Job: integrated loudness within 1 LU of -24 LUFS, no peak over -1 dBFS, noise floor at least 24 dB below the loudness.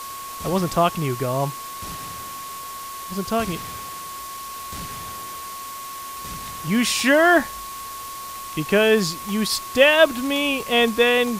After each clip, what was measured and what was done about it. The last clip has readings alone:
steady tone 1.1 kHz; tone level -33 dBFS; noise floor -34 dBFS; noise floor target -45 dBFS; loudness -20.5 LUFS; peak level -2.0 dBFS; loudness target -24.0 LUFS
-> band-stop 1.1 kHz, Q 30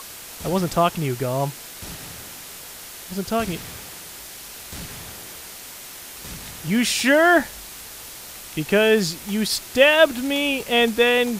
steady tone not found; noise floor -39 dBFS; noise floor target -44 dBFS
-> noise reduction 6 dB, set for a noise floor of -39 dBFS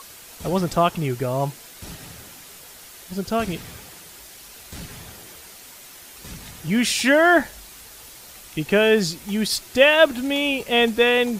noise floor -44 dBFS; loudness -19.5 LUFS; peak level -2.5 dBFS; loudness target -24.0 LUFS
-> trim -4.5 dB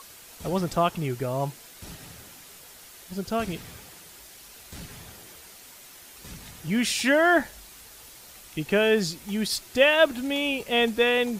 loudness -24.0 LUFS; peak level -7.0 dBFS; noise floor -48 dBFS

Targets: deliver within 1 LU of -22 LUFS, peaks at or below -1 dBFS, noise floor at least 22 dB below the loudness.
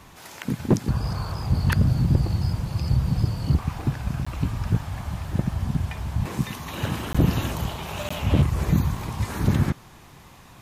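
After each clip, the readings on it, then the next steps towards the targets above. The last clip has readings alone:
clipped samples 0.5%; clipping level -11.5 dBFS; dropouts 3; longest dropout 15 ms; loudness -25.5 LUFS; peak level -11.5 dBFS; loudness target -22.0 LUFS
-> clip repair -11.5 dBFS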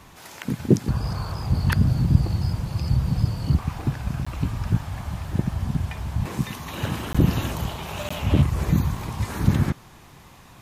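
clipped samples 0.0%; dropouts 3; longest dropout 15 ms
-> interpolate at 4.25/7.13/8.09 s, 15 ms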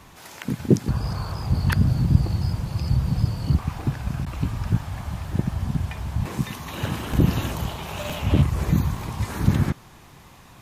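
dropouts 0; loudness -25.0 LUFS; peak level -2.5 dBFS; loudness target -22.0 LUFS
-> trim +3 dB; peak limiter -1 dBFS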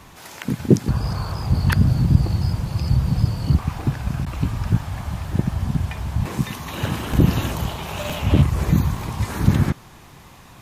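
loudness -22.0 LUFS; peak level -1.0 dBFS; noise floor -45 dBFS

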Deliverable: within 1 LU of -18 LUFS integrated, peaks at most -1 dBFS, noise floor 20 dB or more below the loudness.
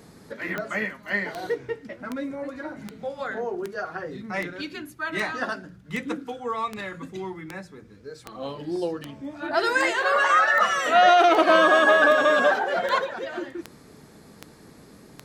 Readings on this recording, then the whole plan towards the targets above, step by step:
clicks found 20; loudness -22.5 LUFS; peak level -6.0 dBFS; loudness target -18.0 LUFS
-> de-click; trim +4.5 dB

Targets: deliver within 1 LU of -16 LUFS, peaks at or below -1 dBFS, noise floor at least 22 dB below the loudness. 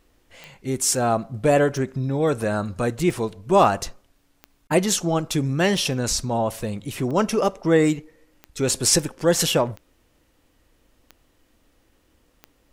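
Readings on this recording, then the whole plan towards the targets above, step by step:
clicks found 10; loudness -22.0 LUFS; peak level -4.0 dBFS; loudness target -16.0 LUFS
-> de-click; trim +6 dB; peak limiter -1 dBFS

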